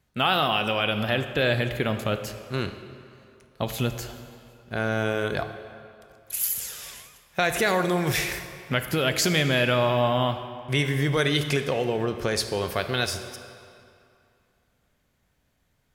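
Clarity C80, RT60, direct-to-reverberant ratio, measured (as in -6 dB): 11.0 dB, 2.6 s, 9.0 dB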